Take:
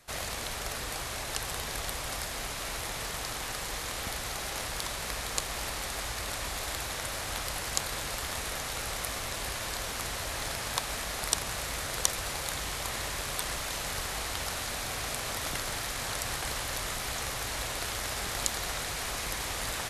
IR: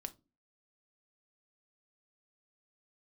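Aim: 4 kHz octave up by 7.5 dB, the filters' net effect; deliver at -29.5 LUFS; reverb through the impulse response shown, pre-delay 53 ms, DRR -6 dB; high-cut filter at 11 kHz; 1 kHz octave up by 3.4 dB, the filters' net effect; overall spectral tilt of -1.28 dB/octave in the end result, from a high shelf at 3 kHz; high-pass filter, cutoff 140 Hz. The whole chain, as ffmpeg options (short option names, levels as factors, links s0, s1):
-filter_complex "[0:a]highpass=140,lowpass=11000,equalizer=f=1000:t=o:g=3.5,highshelf=f=3000:g=4.5,equalizer=f=4000:t=o:g=5.5,asplit=2[s0][s1];[1:a]atrim=start_sample=2205,adelay=53[s2];[s1][s2]afir=irnorm=-1:irlink=0,volume=2.82[s3];[s0][s3]amix=inputs=2:normalize=0,volume=0.398"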